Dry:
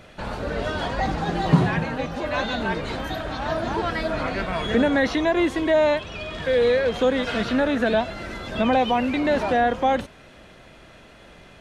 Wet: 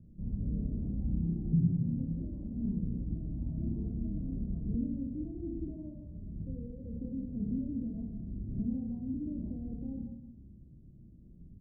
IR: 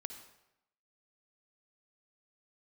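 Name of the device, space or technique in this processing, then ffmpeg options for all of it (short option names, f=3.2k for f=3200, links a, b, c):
club heard from the street: -filter_complex "[0:a]aecho=1:1:30|69|119.7|185.6|271.3:0.631|0.398|0.251|0.158|0.1,alimiter=limit=-14.5dB:level=0:latency=1:release=367,lowpass=f=230:w=0.5412,lowpass=f=230:w=1.3066[a];[1:a]atrim=start_sample=2205[b];[a][b]afir=irnorm=-1:irlink=0"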